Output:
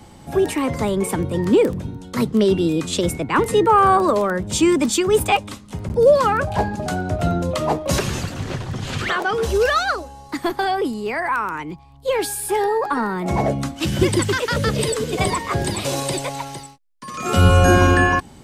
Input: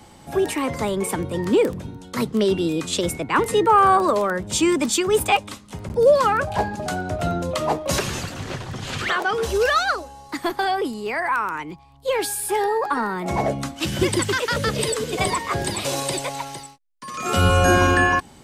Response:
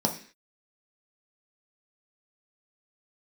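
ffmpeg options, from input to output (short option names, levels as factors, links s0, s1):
-af "lowshelf=f=360:g=6"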